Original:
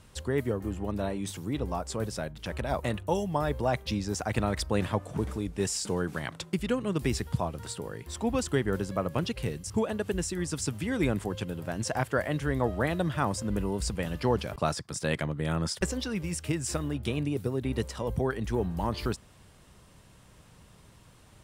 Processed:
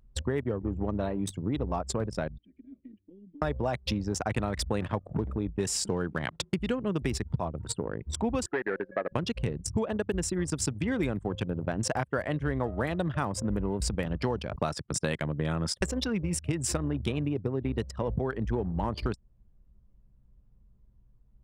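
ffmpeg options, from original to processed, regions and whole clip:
-filter_complex "[0:a]asettb=1/sr,asplit=3[a][b][c];[a]atrim=end=2.384[d];[b]atrim=start=2.38:end=3.42,asetpts=PTS-STARTPTS,afade=t=in:d=0.004:c=qsin,afade=t=out:st=1.036:d=0.004:c=qsin,asplit=3[e][f][g];[e]bandpass=f=270:t=q:w=8,volume=0dB[h];[f]bandpass=f=2.29k:t=q:w=8,volume=-6dB[i];[g]bandpass=f=3.01k:t=q:w=8,volume=-9dB[j];[h][i][j]amix=inputs=3:normalize=0,acompressor=threshold=-44dB:ratio=2.5:attack=3.2:release=140:knee=1:detection=peak[k];[c]atrim=start=3.416[l];[d][k]acrossfade=d=0.004:c1=hsin:c2=qsin[m];[m][l]acrossfade=d=0.004:c1=qsin:c2=hsin,asettb=1/sr,asplit=3[n][o][p];[n]atrim=end=8.464[q];[o]atrim=start=8.46:end=9.12,asetpts=PTS-STARTPTS,afade=t=in:d=0.004:c=qsin,afade=t=out:st=0.656:d=0.004:c=qsin,bandreject=f=1k:w=5.2,volume=23dB,asoftclip=hard,volume=-23dB,highpass=380,equalizer=f=1.1k:t=q:w=4:g=-6,equalizer=f=1.7k:t=q:w=4:g=9,equalizer=f=3.3k:t=q:w=4:g=-8,lowpass=f=3.5k:w=0.5412,lowpass=f=3.5k:w=1.3066[r];[p]atrim=start=9.116[s];[q][r]acrossfade=d=0.004:c1=hsin:c2=qsin[t];[t][s]acrossfade=d=0.004:c1=qsin:c2=hsin,anlmdn=3.98,acompressor=threshold=-34dB:ratio=5,volume=7.5dB"

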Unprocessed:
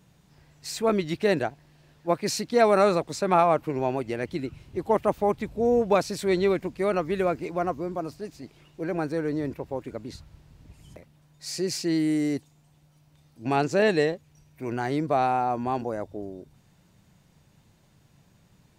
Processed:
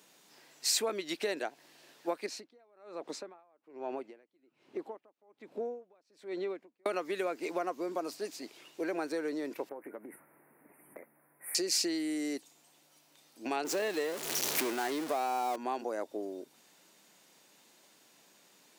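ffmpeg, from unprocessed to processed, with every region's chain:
-filter_complex "[0:a]asettb=1/sr,asplit=3[a][b][c];[a]atrim=end=2.264[d];[b]atrim=start=2.26:end=6.86,asetpts=PTS-STARTPTS,afade=t=in:d=0.004:c=qsin,afade=t=out:st=4.596:d=0.004:c=qsin,lowpass=f=1.2k:p=1,acompressor=threshold=-31dB:ratio=3:attack=3.2:release=140:knee=1:detection=peak,aeval=exprs='val(0)*pow(10,-35*(0.5-0.5*cos(2*PI*1.2*n/s))/20)':c=same[e];[c]atrim=start=6.856[f];[d][e]acrossfade=d=0.004:c1=hsin:c2=qsin[g];[g][f]acrossfade=d=0.004:c1=qsin:c2=hsin,asettb=1/sr,asplit=3[h][i][j];[h]atrim=end=9.694[k];[i]atrim=start=9.69:end=11.55,asetpts=PTS-STARTPTS,afade=t=in:d=0.004:c=qsin,afade=t=out:st=1.856:d=0.004:c=qsin,asuperstop=centerf=4800:order=12:qfactor=0.64,acompressor=threshold=-38dB:ratio=8:attack=3.2:release=140:knee=1:detection=peak,asplit=2[l][m];[m]adelay=14,volume=-13dB[n];[l][n]amix=inputs=2:normalize=0,atrim=end_sample=82026[o];[j]atrim=start=11.546[p];[k][o]acrossfade=d=0.004:c1=hsin:c2=qsin[q];[q][p]acrossfade=d=0.004:c1=qsin:c2=hsin,asettb=1/sr,asplit=3[r][s][t];[r]atrim=end=13.644[u];[s]atrim=start=13.64:end=15.56,asetpts=PTS-STARTPTS,afade=t=in:d=0.004:c=qsin,afade=t=out:st=1.916:d=0.004:c=qsin,aeval=exprs='val(0)+0.5*0.0501*sgn(val(0))':c=same,adynamicequalizer=threshold=0.0141:dfrequency=1900:dqfactor=0.7:tfrequency=1900:tqfactor=0.7:attack=5:release=100:ratio=0.375:range=2.5:mode=cutabove:tftype=highshelf[v];[t]atrim=start=15.556[w];[u][v]acrossfade=d=0.004:c1=hsin:c2=qsin[x];[x][w]acrossfade=d=0.004:c1=qsin:c2=hsin,acompressor=threshold=-30dB:ratio=10,highpass=f=280:w=0.5412,highpass=f=280:w=1.3066,highshelf=f=2.3k:g=8"

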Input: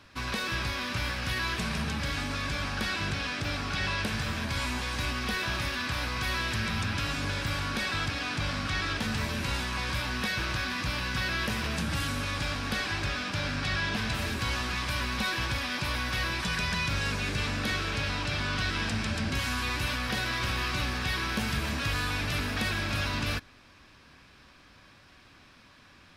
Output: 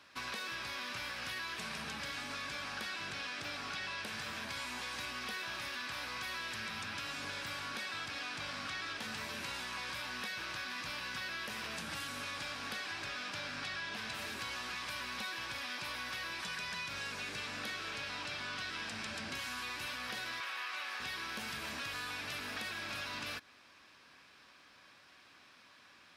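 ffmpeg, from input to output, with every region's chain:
-filter_complex "[0:a]asettb=1/sr,asplit=3[a][b][c];[a]atrim=end=20.404[d];[b]atrim=start=20.4:end=21,asetpts=PTS-STARTPTS,afade=t=in:d=0.004:c=qsin,afade=t=out:st=0.596:d=0.004:c=qsin,highpass=490,tiltshelf=f=640:g=-4.5,acrossover=split=3000[e][f];[f]acompressor=threshold=-41dB:ratio=4:attack=1:release=60[g];[e][g]amix=inputs=2:normalize=0[h];[c]atrim=start=20.996[i];[d][h]acrossfade=d=0.004:c1=hsin:c2=qsin[j];[j][i]acrossfade=d=0.004:c1=qsin:c2=hsin,highpass=f=550:p=1,acompressor=threshold=-35dB:ratio=6,volume=-3dB"

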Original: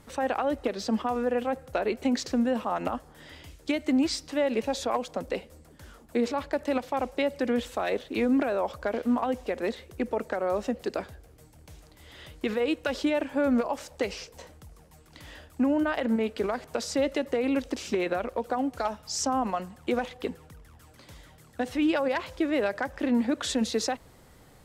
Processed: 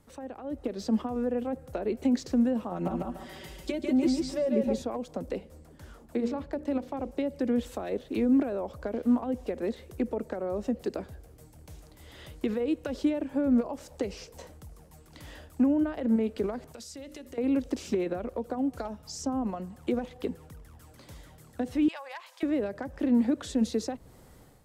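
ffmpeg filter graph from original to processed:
-filter_complex "[0:a]asettb=1/sr,asplit=3[a][b][c];[a]atrim=end=2.714[d];[b]atrim=start=2.71:end=4.82,asetpts=PTS-STARTPTS,afade=t=in:d=0.004:c=qsin,afade=t=out:st=2.106:d=0.004:c=qsin,aecho=1:1:5.3:0.98,atrim=end_sample=93051,aecho=1:1:144|288|432|576:0.708|0.177|0.0442|0.0111,atrim=end_sample=93051[e];[c]atrim=start=4.816[f];[d][e]acrossfade=d=0.004:c1=hsin:c2=qsin[g];[g][f]acrossfade=d=0.004:c1=qsin:c2=hsin,asettb=1/sr,asplit=3[h][i][j];[h]atrim=end=5.384[k];[i]atrim=start=5.38:end=7.11,asetpts=PTS-STARTPTS,afade=t=in:d=0.004:c=qsin,afade=t=out:st=1.726:d=0.004:c=qsin,highshelf=f=6.6k:g=-6.5,bandreject=f=60:t=h:w=6,bandreject=f=120:t=h:w=6,bandreject=f=180:t=h:w=6,bandreject=f=240:t=h:w=6,bandreject=f=300:t=h:w=6,bandreject=f=360:t=h:w=6,bandreject=f=420:t=h:w=6,bandreject=f=480:t=h:w=6,bandreject=f=540:t=h:w=6[l];[j]atrim=start=7.106[m];[k][l]acrossfade=d=0.004:c1=hsin:c2=qsin[n];[n][m]acrossfade=d=0.004:c1=qsin:c2=hsin,asettb=1/sr,asplit=3[o][p][q];[o]atrim=end=16.724[r];[p]atrim=start=16.72:end=17.38,asetpts=PTS-STARTPTS,afade=t=in:d=0.004:c=qsin,afade=t=out:st=0.656:d=0.004:c=qsin,equalizer=f=670:w=0.33:g=-12.5,bandreject=f=50:t=h:w=6,bandreject=f=100:t=h:w=6,bandreject=f=150:t=h:w=6,bandreject=f=200:t=h:w=6,bandreject=f=250:t=h:w=6,bandreject=f=300:t=h:w=6,bandreject=f=350:t=h:w=6,bandreject=f=400:t=h:w=6,bandreject=f=450:t=h:w=6,acompressor=threshold=-40dB:ratio=6:attack=3.2:release=140:knee=1:detection=peak[s];[q]atrim=start=17.376[t];[r][s]acrossfade=d=0.004:c1=hsin:c2=qsin[u];[u][t]acrossfade=d=0.004:c1=qsin:c2=hsin,asettb=1/sr,asplit=3[v][w][x];[v]atrim=end=21.884[y];[w]atrim=start=21.88:end=22.43,asetpts=PTS-STARTPTS,afade=t=in:d=0.004:c=qsin,afade=t=out:st=0.546:d=0.004:c=qsin,highpass=f=860:w=0.5412,highpass=f=860:w=1.3066,bandreject=f=1.4k:w=9.9[z];[x]atrim=start=22.426[aa];[y][z]acrossfade=d=0.004:c1=hsin:c2=qsin[ab];[ab][aa]acrossfade=d=0.004:c1=qsin:c2=hsin,acrossover=split=430[ac][ad];[ad]acompressor=threshold=-39dB:ratio=4[ae];[ac][ae]amix=inputs=2:normalize=0,equalizer=f=2.5k:t=o:w=2.8:g=-5,dynaudnorm=f=400:g=3:m=9dB,volume=-7dB"

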